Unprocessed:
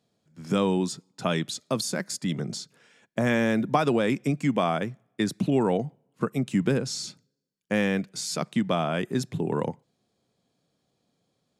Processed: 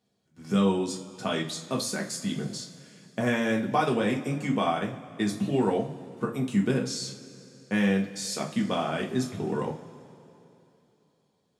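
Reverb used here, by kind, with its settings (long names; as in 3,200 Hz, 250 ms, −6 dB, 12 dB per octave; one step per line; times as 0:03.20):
coupled-rooms reverb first 0.3 s, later 3.1 s, from −21 dB, DRR −1.5 dB
level −5 dB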